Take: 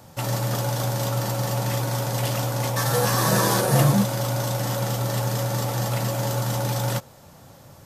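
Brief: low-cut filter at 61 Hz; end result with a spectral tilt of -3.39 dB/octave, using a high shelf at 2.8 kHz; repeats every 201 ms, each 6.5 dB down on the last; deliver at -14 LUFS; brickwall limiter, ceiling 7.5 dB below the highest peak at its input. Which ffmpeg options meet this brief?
-af "highpass=61,highshelf=f=2800:g=8,alimiter=limit=0.237:level=0:latency=1,aecho=1:1:201|402|603|804|1005|1206:0.473|0.222|0.105|0.0491|0.0231|0.0109,volume=2.24"

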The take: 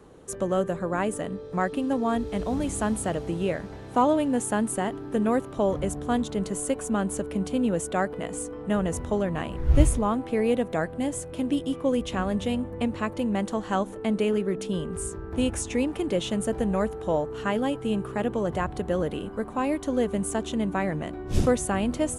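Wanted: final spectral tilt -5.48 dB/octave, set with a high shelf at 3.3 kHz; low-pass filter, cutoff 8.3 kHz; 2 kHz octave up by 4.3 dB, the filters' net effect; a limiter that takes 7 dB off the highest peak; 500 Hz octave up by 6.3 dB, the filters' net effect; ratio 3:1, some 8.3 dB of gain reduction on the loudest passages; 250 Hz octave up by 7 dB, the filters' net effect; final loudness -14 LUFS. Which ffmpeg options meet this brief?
-af "lowpass=8300,equalizer=f=250:t=o:g=7,equalizer=f=500:t=o:g=5.5,equalizer=f=2000:t=o:g=7.5,highshelf=f=3300:g=-8.5,acompressor=threshold=0.1:ratio=3,volume=4.47,alimiter=limit=0.631:level=0:latency=1"

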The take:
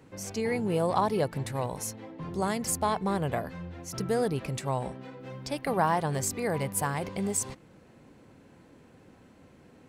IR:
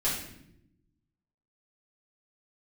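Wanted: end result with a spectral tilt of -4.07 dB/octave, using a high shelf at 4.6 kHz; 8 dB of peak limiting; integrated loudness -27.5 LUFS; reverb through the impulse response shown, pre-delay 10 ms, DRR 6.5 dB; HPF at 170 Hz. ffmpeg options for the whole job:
-filter_complex "[0:a]highpass=170,highshelf=f=4600:g=5,alimiter=limit=0.106:level=0:latency=1,asplit=2[s0][s1];[1:a]atrim=start_sample=2205,adelay=10[s2];[s1][s2]afir=irnorm=-1:irlink=0,volume=0.178[s3];[s0][s3]amix=inputs=2:normalize=0,volume=1.5"

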